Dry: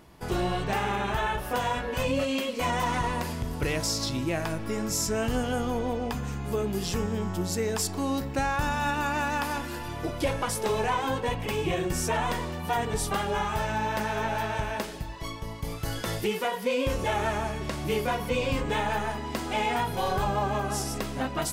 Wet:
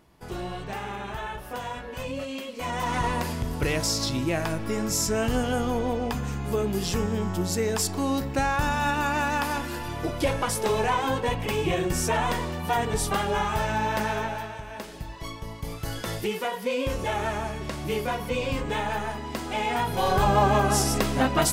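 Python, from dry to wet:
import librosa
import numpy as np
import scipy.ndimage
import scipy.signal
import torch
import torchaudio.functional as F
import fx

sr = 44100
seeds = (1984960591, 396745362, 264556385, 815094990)

y = fx.gain(x, sr, db=fx.line((2.52, -6.0), (3.05, 2.5), (14.11, 2.5), (14.62, -9.0), (15.06, -0.5), (19.61, -0.5), (20.4, 7.5)))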